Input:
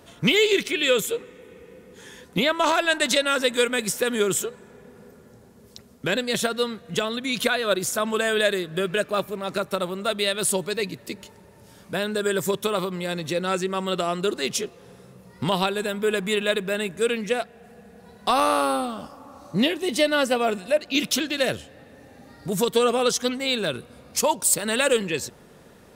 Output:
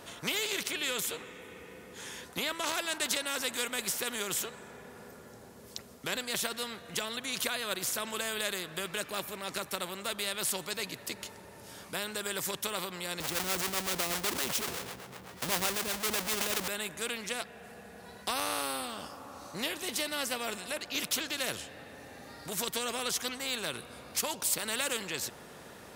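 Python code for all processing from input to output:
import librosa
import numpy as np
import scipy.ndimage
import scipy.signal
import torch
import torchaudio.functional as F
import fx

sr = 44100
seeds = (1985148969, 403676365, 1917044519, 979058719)

y = fx.chain(x, sr, fx.halfwave_hold(),
    fx.harmonic_tremolo(hz=7.9, depth_pct=70, crossover_hz=440.0),
    fx.sustainer(db_per_s=50.0), at=(13.2, 16.68))
y = scipy.signal.sosfilt(scipy.signal.butter(2, 52.0, 'highpass', fs=sr, output='sos'), y)
y = fx.low_shelf(y, sr, hz=250.0, db=-6.5)
y = fx.spectral_comp(y, sr, ratio=2.0)
y = y * librosa.db_to_amplitude(-5.5)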